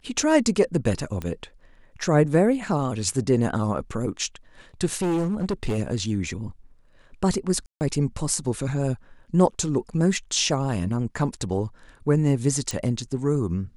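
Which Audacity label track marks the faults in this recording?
1.220000	1.220000	pop -18 dBFS
4.920000	5.790000	clipped -20.5 dBFS
7.660000	7.810000	gap 0.149 s
12.710000	12.710000	pop

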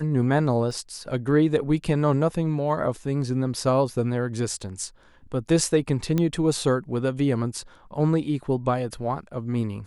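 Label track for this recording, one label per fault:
0.710000	0.710000	gap 2.4 ms
6.180000	6.180000	pop -12 dBFS

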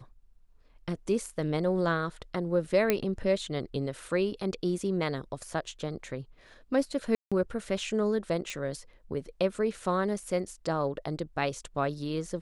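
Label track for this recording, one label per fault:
2.900000	2.900000	pop -10 dBFS
7.150000	7.320000	gap 0.166 s
8.500000	8.500000	pop -21 dBFS

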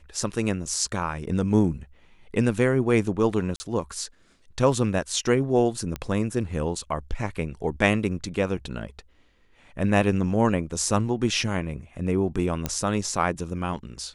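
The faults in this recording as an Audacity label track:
3.560000	3.600000	gap 40 ms
5.960000	5.960000	pop -16 dBFS
12.660000	12.660000	pop -10 dBFS

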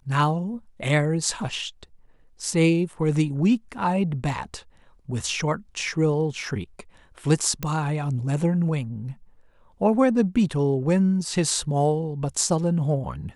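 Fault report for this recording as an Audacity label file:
7.630000	7.630000	pop -12 dBFS

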